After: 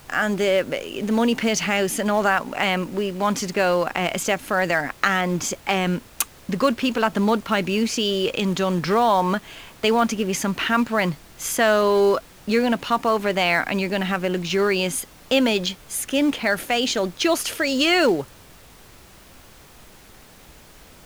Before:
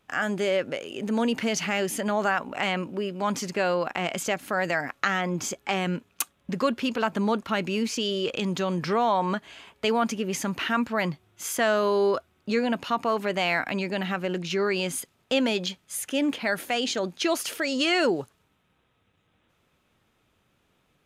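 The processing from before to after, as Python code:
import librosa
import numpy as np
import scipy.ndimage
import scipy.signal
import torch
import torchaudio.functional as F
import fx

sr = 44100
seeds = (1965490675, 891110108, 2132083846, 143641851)

p1 = fx.quant_companded(x, sr, bits=4)
p2 = x + (p1 * librosa.db_to_amplitude(-11.0))
p3 = fx.dmg_noise_colour(p2, sr, seeds[0], colour='pink', level_db=-50.0)
y = p3 * librosa.db_to_amplitude(3.0)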